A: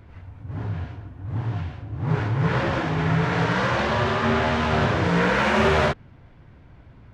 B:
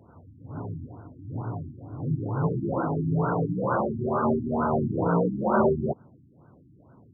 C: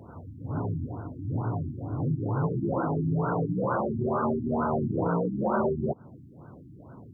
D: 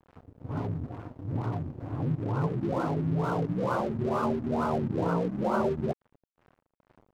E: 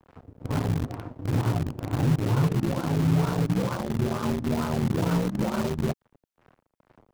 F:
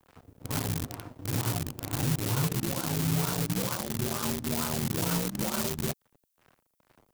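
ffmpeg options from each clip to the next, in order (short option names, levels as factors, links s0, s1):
-af "highpass=160,afftfilt=real='re*lt(b*sr/1024,340*pow(1600/340,0.5+0.5*sin(2*PI*2.2*pts/sr)))':imag='im*lt(b*sr/1024,340*pow(1600/340,0.5+0.5*sin(2*PI*2.2*pts/sr)))':win_size=1024:overlap=0.75"
-af "acompressor=threshold=0.02:ratio=3,volume=2.24"
-af "aeval=exprs='sgn(val(0))*max(abs(val(0))-0.00794,0)':c=same"
-filter_complex "[0:a]acrossover=split=230|3000[s0][s1][s2];[s1]acompressor=threshold=0.0141:ratio=10[s3];[s0][s3][s2]amix=inputs=3:normalize=0,asplit=2[s4][s5];[s5]acrusher=bits=4:mix=0:aa=0.000001,volume=0.447[s6];[s4][s6]amix=inputs=2:normalize=0,volume=1.58"
-af "crystalizer=i=6:c=0,volume=0.473"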